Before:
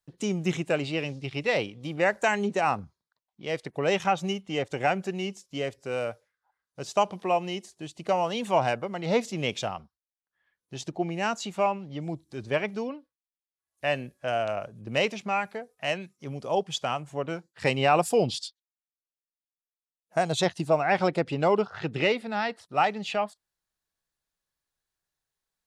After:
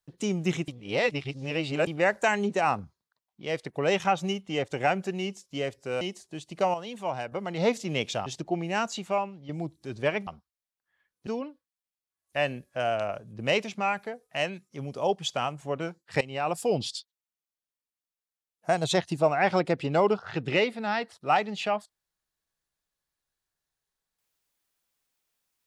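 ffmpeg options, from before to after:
-filter_complex "[0:a]asplit=11[a][b][c][d][e][f][g][h][i][j][k];[a]atrim=end=0.682[l];[b]atrim=start=0.678:end=1.872,asetpts=PTS-STARTPTS,areverse[m];[c]atrim=start=1.868:end=6.012[n];[d]atrim=start=7.488:end=8.222[o];[e]atrim=start=8.218:end=8.802,asetpts=PTS-STARTPTS,volume=-8dB[p];[f]atrim=start=8.798:end=9.742[q];[g]atrim=start=10.738:end=11.97,asetpts=PTS-STARTPTS,afade=t=out:st=0.682:d=0.55:silence=0.375837[r];[h]atrim=start=11.97:end=12.752,asetpts=PTS-STARTPTS,afade=t=in:d=0.004:c=hsin:silence=0.375837[s];[i]atrim=start=9.738:end=10.742[t];[j]atrim=start=12.748:end=17.69,asetpts=PTS-STARTPTS,afade=t=out:st=4.938:d=0.004:c=hsin:silence=0.141254[u];[k]atrim=start=17.69,asetpts=PTS-STARTPTS,afade=t=in:d=0.76:silence=0.141254[v];[l][m]acrossfade=d=0.004:c1=hsin:c2=hsin[w];[w][n]acrossfade=d=0.004:c1=hsin:c2=hsin[x];[x][o]acrossfade=d=0.004:c1=hsin:c2=hsin[y];[y][p]acrossfade=d=0.004:c1=hsin:c2=hsin[z];[z][q]acrossfade=d=0.004:c1=hsin:c2=hsin[aa];[r][s]concat=n=2:v=0:a=1[ab];[aa][ab]acrossfade=d=0.004:c1=hsin:c2=hsin[ac];[ac][t]acrossfade=d=0.004:c1=hsin:c2=hsin[ad];[u][v]concat=n=2:v=0:a=1[ae];[ad][ae]acrossfade=d=0.004:c1=hsin:c2=hsin"

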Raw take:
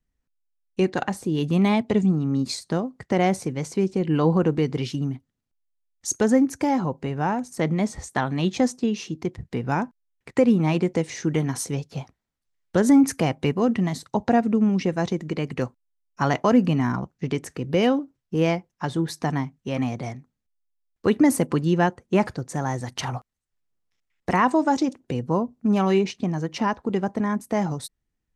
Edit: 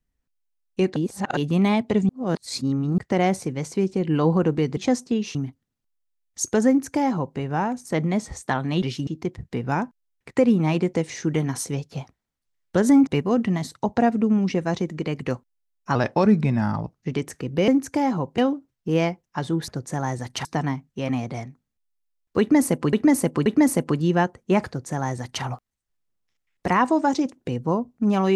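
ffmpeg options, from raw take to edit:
-filter_complex "[0:a]asplit=18[a][b][c][d][e][f][g][h][i][j][k][l][m][n][o][p][q][r];[a]atrim=end=0.962[s];[b]atrim=start=0.958:end=1.372,asetpts=PTS-STARTPTS,areverse[t];[c]atrim=start=1.368:end=2.092[u];[d]atrim=start=2.088:end=2.982,asetpts=PTS-STARTPTS,areverse[v];[e]atrim=start=2.978:end=4.772[w];[f]atrim=start=8.488:end=9.072[x];[g]atrim=start=5.018:end=8.492[y];[h]atrim=start=4.768:end=5.022[z];[i]atrim=start=9.068:end=13.072[aa];[j]atrim=start=13.378:end=16.264[ab];[k]atrim=start=16.26:end=17.18,asetpts=PTS-STARTPTS,asetrate=37926,aresample=44100[ac];[l]atrim=start=17.176:end=17.842[ad];[m]atrim=start=6.348:end=7.052[ae];[n]atrim=start=17.838:end=19.142[af];[o]atrim=start=22.298:end=23.072[ag];[p]atrim=start=19.138:end=21.622[ah];[q]atrim=start=21.088:end=21.622[ai];[r]atrim=start=21.088[aj];[s][t]acrossfade=d=0.004:c1=hsin:c2=hsin[ak];[ak][u]acrossfade=d=0.004:c1=hsin:c2=hsin[al];[al][v]acrossfade=d=0.004:c1=hsin:c2=hsin[am];[am][w]acrossfade=d=0.004:c1=hsin:c2=hsin[an];[an][x]acrossfade=d=0.004:c1=hsin:c2=hsin[ao];[ao][y]acrossfade=d=0.004:c1=hsin:c2=hsin[ap];[ap][z]acrossfade=d=0.004:c1=hsin:c2=hsin[aq];[aq][aa]acrossfade=d=0.004:c1=hsin:c2=hsin[ar];[ar][ab]acrossfade=d=0.004:c1=hsin:c2=hsin[as];[as][ac]acrossfade=d=0.004:c1=hsin:c2=hsin[at];[at][ad]acrossfade=d=0.004:c1=hsin:c2=hsin[au];[au][ae]acrossfade=d=0.004:c1=hsin:c2=hsin[av];[av][af]acrossfade=d=0.004:c1=hsin:c2=hsin[aw];[aw][ag]acrossfade=d=0.004:c1=hsin:c2=hsin[ax];[ax][ah]acrossfade=d=0.004:c1=hsin:c2=hsin[ay];[ay][ai]acrossfade=d=0.004:c1=hsin:c2=hsin[az];[az][aj]acrossfade=d=0.004:c1=hsin:c2=hsin"

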